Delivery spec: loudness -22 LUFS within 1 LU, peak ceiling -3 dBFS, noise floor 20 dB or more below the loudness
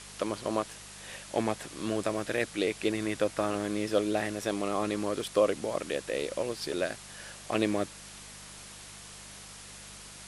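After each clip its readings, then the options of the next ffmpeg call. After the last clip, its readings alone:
hum 50 Hz; harmonics up to 200 Hz; hum level -53 dBFS; noise floor -48 dBFS; noise floor target -52 dBFS; loudness -31.5 LUFS; peak -11.5 dBFS; loudness target -22.0 LUFS
-> -af "bandreject=f=50:t=h:w=4,bandreject=f=100:t=h:w=4,bandreject=f=150:t=h:w=4,bandreject=f=200:t=h:w=4"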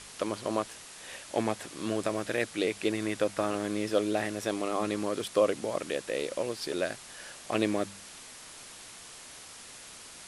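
hum none; noise floor -48 dBFS; noise floor target -52 dBFS
-> -af "afftdn=nr=6:nf=-48"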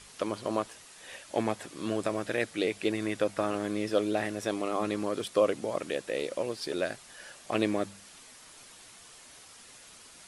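noise floor -53 dBFS; loudness -31.5 LUFS; peak -11.5 dBFS; loudness target -22.0 LUFS
-> -af "volume=9.5dB,alimiter=limit=-3dB:level=0:latency=1"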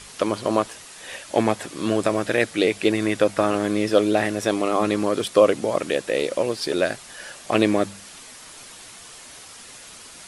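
loudness -22.0 LUFS; peak -3.0 dBFS; noise floor -43 dBFS

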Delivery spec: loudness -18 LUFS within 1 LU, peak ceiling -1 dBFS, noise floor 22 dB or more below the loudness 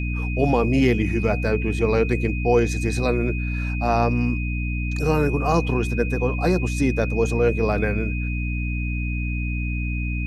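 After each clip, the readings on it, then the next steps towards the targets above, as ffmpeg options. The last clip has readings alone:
hum 60 Hz; harmonics up to 300 Hz; hum level -23 dBFS; steady tone 2500 Hz; tone level -32 dBFS; loudness -22.5 LUFS; peak -6.0 dBFS; loudness target -18.0 LUFS
-> -af "bandreject=f=60:t=h:w=6,bandreject=f=120:t=h:w=6,bandreject=f=180:t=h:w=6,bandreject=f=240:t=h:w=6,bandreject=f=300:t=h:w=6"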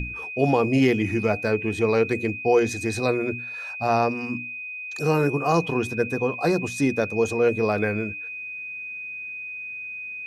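hum none; steady tone 2500 Hz; tone level -32 dBFS
-> -af "bandreject=f=2.5k:w=30"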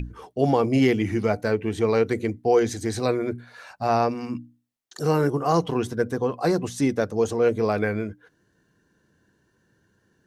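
steady tone none; loudness -24.0 LUFS; peak -8.5 dBFS; loudness target -18.0 LUFS
-> -af "volume=6dB"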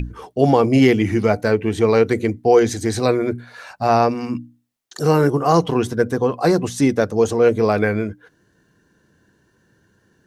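loudness -18.0 LUFS; peak -2.5 dBFS; noise floor -62 dBFS

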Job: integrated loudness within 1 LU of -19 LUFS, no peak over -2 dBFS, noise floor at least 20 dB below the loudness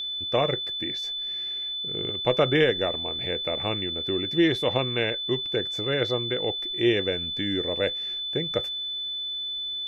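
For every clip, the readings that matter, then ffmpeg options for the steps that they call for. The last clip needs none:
steady tone 3500 Hz; tone level -29 dBFS; loudness -26.0 LUFS; peak -8.5 dBFS; loudness target -19.0 LUFS
-> -af "bandreject=f=3.5k:w=30"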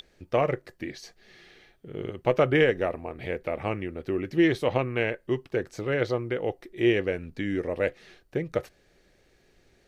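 steady tone none; loudness -28.0 LUFS; peak -8.5 dBFS; loudness target -19.0 LUFS
-> -af "volume=9dB,alimiter=limit=-2dB:level=0:latency=1"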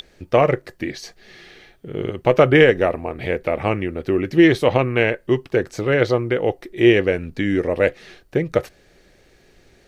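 loudness -19.0 LUFS; peak -2.0 dBFS; noise floor -55 dBFS

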